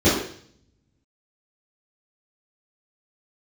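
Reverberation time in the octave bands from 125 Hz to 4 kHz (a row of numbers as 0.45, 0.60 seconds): 1.2, 0.65, 0.55, 0.55, 0.60, 0.65 seconds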